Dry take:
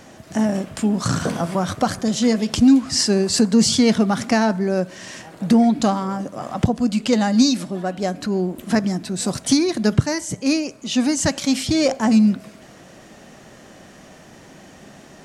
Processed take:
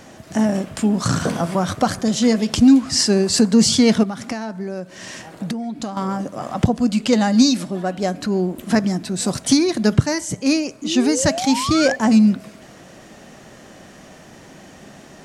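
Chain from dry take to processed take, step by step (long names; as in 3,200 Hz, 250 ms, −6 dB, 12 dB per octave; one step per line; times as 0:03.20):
0:04.03–0:05.97: downward compressor 12 to 1, threshold −25 dBFS, peak gain reduction 15 dB
0:10.82–0:11.96: sound drawn into the spectrogram rise 280–1,800 Hz −27 dBFS
level +1.5 dB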